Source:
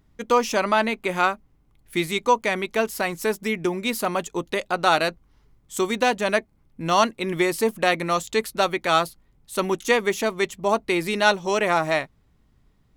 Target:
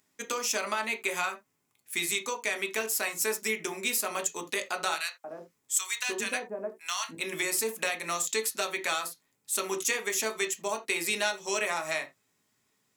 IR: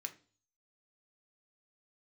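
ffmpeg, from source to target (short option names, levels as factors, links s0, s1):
-filter_complex "[0:a]bass=f=250:g=-12,treble=f=4000:g=10,acompressor=threshold=0.0794:ratio=6,asettb=1/sr,asplit=3[s0][s1][s2];[s0]atrim=end=4.944[s3];[s1]atrim=start=4.94:end=7.15,asetpts=PTS-STARTPTS,afade=t=in:d=0.004:c=qsin,afade=t=out:st=2.206:d=0.004:c=qsin,acrossover=split=920[s4][s5];[s4]adelay=300[s6];[s6][s5]amix=inputs=2:normalize=0,atrim=end_sample=97461[s7];[s2]atrim=start=7.146[s8];[s3][s7]acrossfade=d=0.004:c1=hsin:c2=qsin[s9];[s9][s8]acrossfade=d=0.004:c1=qsin:c2=hsin[s10];[1:a]atrim=start_sample=2205,atrim=end_sample=3969[s11];[s10][s11]afir=irnorm=-1:irlink=0"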